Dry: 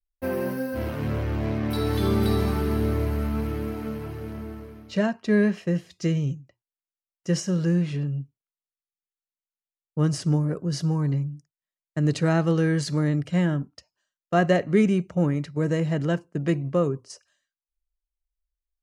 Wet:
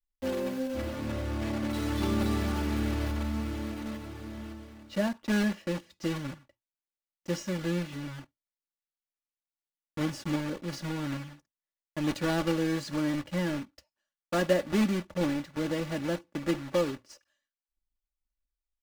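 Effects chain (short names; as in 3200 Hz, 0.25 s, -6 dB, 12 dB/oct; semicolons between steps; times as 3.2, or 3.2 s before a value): block floating point 3-bit; high shelf 6600 Hz -11 dB; comb 3.5 ms, depth 62%; gain -6.5 dB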